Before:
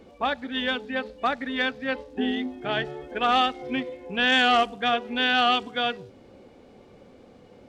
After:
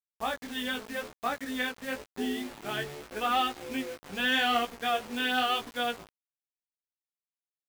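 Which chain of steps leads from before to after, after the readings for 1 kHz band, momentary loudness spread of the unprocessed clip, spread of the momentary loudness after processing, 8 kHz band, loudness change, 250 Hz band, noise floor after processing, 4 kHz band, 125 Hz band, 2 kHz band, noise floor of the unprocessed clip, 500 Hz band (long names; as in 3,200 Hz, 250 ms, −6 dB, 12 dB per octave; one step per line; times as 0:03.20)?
−6.0 dB, 11 LU, 10 LU, can't be measured, −6.0 dB, −6.0 dB, below −85 dBFS, −6.5 dB, −5.5 dB, −6.0 dB, −52 dBFS, −6.5 dB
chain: bit-depth reduction 6 bits, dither none
chorus effect 0.86 Hz, delay 16.5 ms, depth 3.9 ms
level −3.5 dB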